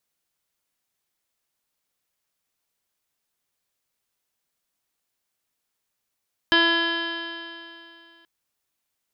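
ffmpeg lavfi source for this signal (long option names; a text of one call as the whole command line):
ffmpeg -f lavfi -i "aevalsrc='0.0794*pow(10,-3*t/2.64)*sin(2*PI*333.15*t)+0.0355*pow(10,-3*t/2.64)*sin(2*PI*667.17*t)+0.0596*pow(10,-3*t/2.64)*sin(2*PI*1002.95*t)+0.0251*pow(10,-3*t/2.64)*sin(2*PI*1341.34*t)+0.133*pow(10,-3*t/2.64)*sin(2*PI*1683.22*t)+0.0168*pow(10,-3*t/2.64)*sin(2*PI*2029.4*t)+0.015*pow(10,-3*t/2.64)*sin(2*PI*2380.73*t)+0.0211*pow(10,-3*t/2.64)*sin(2*PI*2737.99*t)+0.106*pow(10,-3*t/2.64)*sin(2*PI*3101.97*t)+0.02*pow(10,-3*t/2.64)*sin(2*PI*3473.43*t)+0.0282*pow(10,-3*t/2.64)*sin(2*PI*3853.09*t)+0.0106*pow(10,-3*t/2.64)*sin(2*PI*4241.64*t)+0.015*pow(10,-3*t/2.64)*sin(2*PI*4639.75*t)+0.0211*pow(10,-3*t/2.64)*sin(2*PI*5048.07*t)':duration=1.73:sample_rate=44100" out.wav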